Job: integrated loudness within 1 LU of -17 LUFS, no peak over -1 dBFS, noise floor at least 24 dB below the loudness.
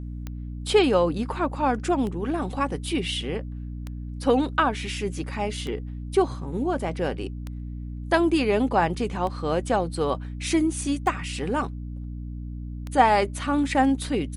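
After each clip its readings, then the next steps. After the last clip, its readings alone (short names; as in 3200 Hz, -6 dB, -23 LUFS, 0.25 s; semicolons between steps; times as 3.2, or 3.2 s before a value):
clicks 8; hum 60 Hz; harmonics up to 300 Hz; hum level -31 dBFS; loudness -25.0 LUFS; peak -4.5 dBFS; loudness target -17.0 LUFS
-> de-click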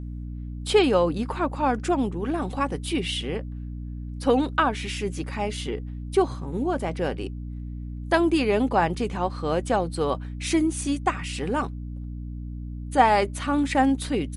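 clicks 0; hum 60 Hz; harmonics up to 300 Hz; hum level -31 dBFS
-> notches 60/120/180/240/300 Hz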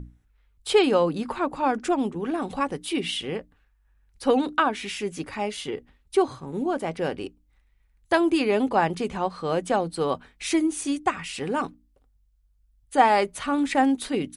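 hum none; loudness -25.5 LUFS; peak -4.5 dBFS; loudness target -17.0 LUFS
-> gain +8.5 dB; limiter -1 dBFS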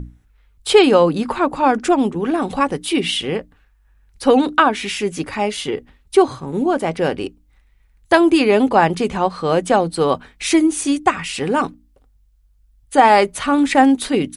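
loudness -17.0 LUFS; peak -1.0 dBFS; noise floor -57 dBFS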